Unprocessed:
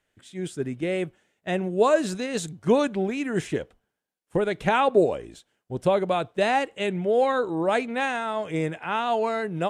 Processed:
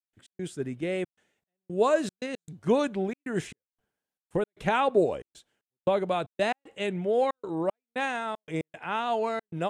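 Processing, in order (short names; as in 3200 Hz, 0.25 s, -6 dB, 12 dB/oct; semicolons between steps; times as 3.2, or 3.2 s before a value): step gate ".x.xxxxx.xx..xxx" 115 bpm -60 dB; gain -3.5 dB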